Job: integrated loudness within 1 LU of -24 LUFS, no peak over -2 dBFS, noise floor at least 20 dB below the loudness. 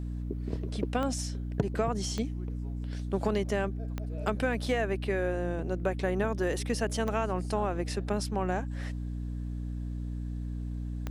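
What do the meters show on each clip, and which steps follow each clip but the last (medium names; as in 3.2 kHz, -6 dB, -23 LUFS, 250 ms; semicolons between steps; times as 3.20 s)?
clicks found 5; hum 60 Hz; highest harmonic 300 Hz; hum level -32 dBFS; loudness -32.5 LUFS; peak level -15.0 dBFS; loudness target -24.0 LUFS
-> de-click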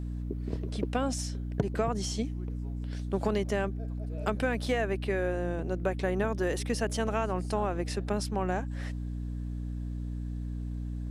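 clicks found 0; hum 60 Hz; highest harmonic 300 Hz; hum level -32 dBFS
-> hum notches 60/120/180/240/300 Hz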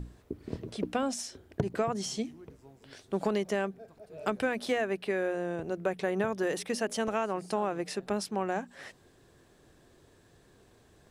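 hum not found; loudness -33.0 LUFS; peak level -16.5 dBFS; loudness target -24.0 LUFS
-> trim +9 dB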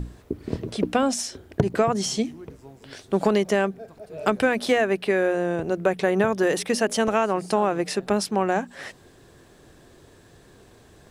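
loudness -24.0 LUFS; peak level -7.5 dBFS; noise floor -53 dBFS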